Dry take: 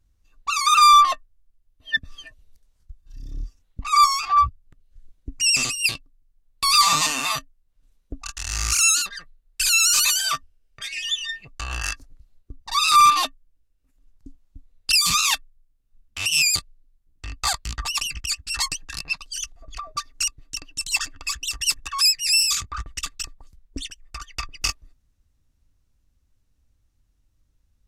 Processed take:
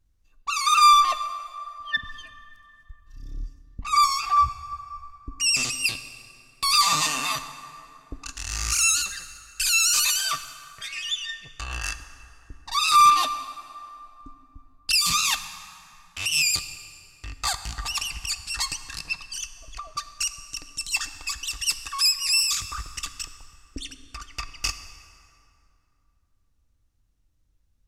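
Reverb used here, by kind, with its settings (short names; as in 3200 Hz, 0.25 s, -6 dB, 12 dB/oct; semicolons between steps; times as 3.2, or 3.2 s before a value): plate-style reverb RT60 2.8 s, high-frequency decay 0.6×, DRR 10 dB; gain -3 dB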